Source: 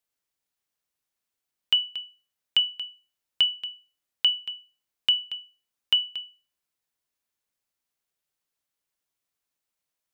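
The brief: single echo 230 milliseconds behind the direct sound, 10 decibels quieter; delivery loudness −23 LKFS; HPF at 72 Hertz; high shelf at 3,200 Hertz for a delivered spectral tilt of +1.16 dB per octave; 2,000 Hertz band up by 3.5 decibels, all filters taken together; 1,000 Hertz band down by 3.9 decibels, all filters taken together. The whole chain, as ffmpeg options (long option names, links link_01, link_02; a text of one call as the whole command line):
ffmpeg -i in.wav -af "highpass=72,equalizer=frequency=1000:width_type=o:gain=-8,equalizer=frequency=2000:width_type=o:gain=8.5,highshelf=frequency=3200:gain=-3.5,aecho=1:1:230:0.316,volume=0.5dB" out.wav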